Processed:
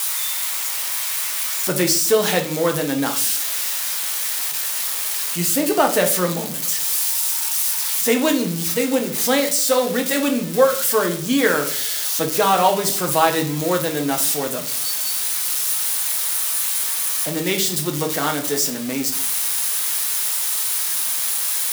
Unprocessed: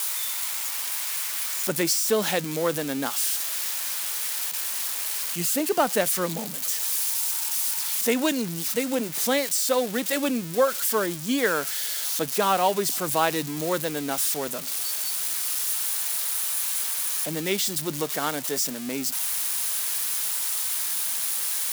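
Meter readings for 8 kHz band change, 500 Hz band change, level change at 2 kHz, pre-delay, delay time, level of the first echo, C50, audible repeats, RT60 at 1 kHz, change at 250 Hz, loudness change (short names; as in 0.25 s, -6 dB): +5.5 dB, +6.0 dB, +5.5 dB, 5 ms, none, none, 11.0 dB, none, 0.50 s, +6.5 dB, +5.5 dB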